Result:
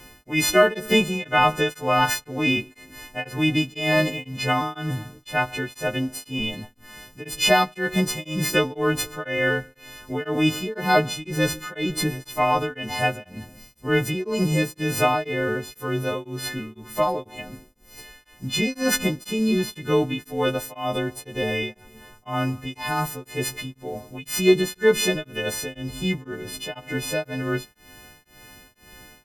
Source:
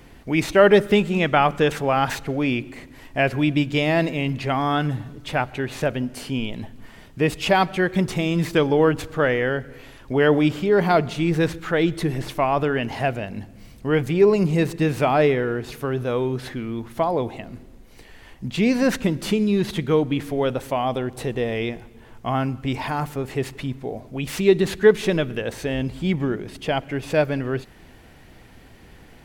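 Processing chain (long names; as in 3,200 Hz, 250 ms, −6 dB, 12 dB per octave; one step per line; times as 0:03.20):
every partial snapped to a pitch grid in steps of 3 semitones
tremolo along a rectified sine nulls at 2 Hz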